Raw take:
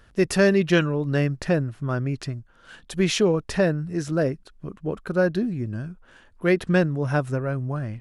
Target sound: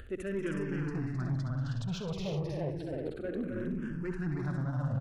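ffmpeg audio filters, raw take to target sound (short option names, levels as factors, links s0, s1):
-filter_complex "[0:a]areverse,acompressor=threshold=0.0158:ratio=5,areverse,highshelf=f=6600:g=-11,asplit=2[s0][s1];[s1]asoftclip=type=hard:threshold=0.0106,volume=0.531[s2];[s0][s2]amix=inputs=2:normalize=0,acompressor=mode=upward:threshold=0.01:ratio=2.5,atempo=1.6,lowshelf=f=240:g=6.5,aecho=1:1:67|187|263|315|368|409:0.355|0.224|0.531|0.668|0.447|0.2,asoftclip=type=tanh:threshold=0.0562,asplit=2[s3][s4];[s4]afreqshift=-0.31[s5];[s3][s5]amix=inputs=2:normalize=1"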